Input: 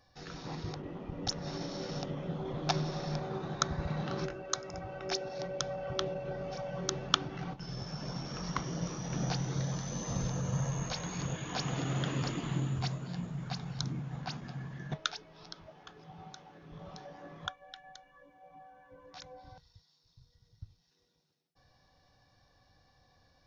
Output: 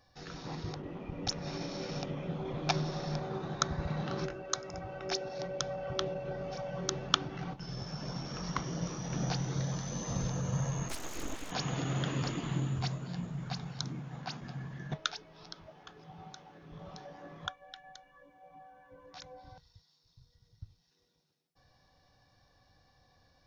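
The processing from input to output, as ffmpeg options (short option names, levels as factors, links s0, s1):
-filter_complex "[0:a]asettb=1/sr,asplit=3[s0][s1][s2];[s0]atrim=end=0.914[s3];[s1]atrim=start=0.91:end=2.72,asetpts=PTS-STARTPTS,afade=t=in:d=0.004:c=qsin,afade=t=out:st=1.806:d=0.004:c=qsin,equalizer=f=2400:w=7:g=8.5[s4];[s2]atrim=start=2.716[s5];[s3][s4]acrossfade=d=0.004:c1=hsin:c2=qsin[s6];[s6][s5]acrossfade=d=0.004:c1=qsin:c2=hsin,asplit=3[s7][s8][s9];[s7]afade=t=out:st=10.88:d=0.02[s10];[s8]aeval=exprs='abs(val(0))':c=same,afade=t=in:st=10.88:d=0.02,afade=t=out:st=11.5:d=0.02[s11];[s9]afade=t=in:st=11.5:d=0.02[s12];[s10][s11][s12]amix=inputs=3:normalize=0,asettb=1/sr,asplit=3[s13][s14][s15];[s13]atrim=end=13.684[s16];[s14]atrim=start=13.68:end=14.41,asetpts=PTS-STARTPTS,afade=t=in:d=0.004:c=qsin,afade=t=out:st=0.726:d=0.004:c=qsin,lowshelf=f=92:g=-12[s17];[s15]atrim=start=14.406[s18];[s16][s17]acrossfade=d=0.004:c1=hsin:c2=qsin[s19];[s19][s18]acrossfade=d=0.004:c1=qsin:c2=hsin"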